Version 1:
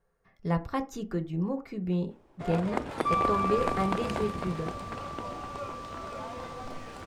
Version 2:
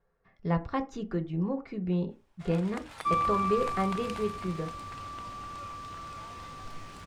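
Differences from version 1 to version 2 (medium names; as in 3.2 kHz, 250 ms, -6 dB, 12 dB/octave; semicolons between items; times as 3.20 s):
speech: add low-pass 4.5 kHz 12 dB/octave; first sound: add amplifier tone stack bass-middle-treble 10-0-10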